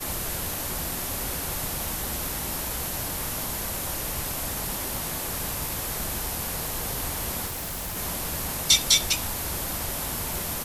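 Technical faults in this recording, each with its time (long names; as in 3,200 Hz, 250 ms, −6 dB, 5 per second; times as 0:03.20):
surface crackle 47 per second −37 dBFS
0:07.46–0:07.98: clipping −29.5 dBFS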